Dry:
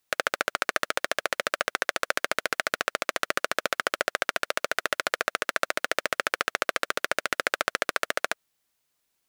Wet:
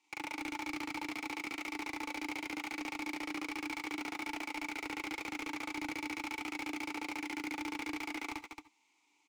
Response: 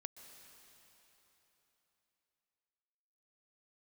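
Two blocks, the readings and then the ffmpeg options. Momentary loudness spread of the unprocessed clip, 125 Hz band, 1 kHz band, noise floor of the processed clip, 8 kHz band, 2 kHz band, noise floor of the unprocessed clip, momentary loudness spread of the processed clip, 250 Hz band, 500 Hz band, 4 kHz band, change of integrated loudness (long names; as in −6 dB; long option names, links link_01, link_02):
2 LU, −8.0 dB, −12.0 dB, −74 dBFS, −14.5 dB, −13.0 dB, −77 dBFS, 1 LU, +4.5 dB, −18.5 dB, −13.5 dB, −11.5 dB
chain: -filter_complex "[0:a]asplit=3[link_01][link_02][link_03];[link_01]bandpass=frequency=300:width_type=q:width=8,volume=0dB[link_04];[link_02]bandpass=frequency=870:width_type=q:width=8,volume=-6dB[link_05];[link_03]bandpass=frequency=2240:width_type=q:width=8,volume=-9dB[link_06];[link_04][link_05][link_06]amix=inputs=3:normalize=0,equalizer=frequency=6900:width=1.3:gain=12.5,asplit=2[link_07][link_08];[link_08]highpass=frequency=720:poles=1,volume=34dB,asoftclip=type=tanh:threshold=-24dB[link_09];[link_07][link_09]amix=inputs=2:normalize=0,lowpass=frequency=6200:poles=1,volume=-6dB,aecho=1:1:40.82|207|265.3:1|0.316|0.501[link_10];[1:a]atrim=start_sample=2205,afade=type=out:start_time=0.21:duration=0.01,atrim=end_sample=9702,asetrate=79380,aresample=44100[link_11];[link_10][link_11]afir=irnorm=-1:irlink=0,volume=4dB"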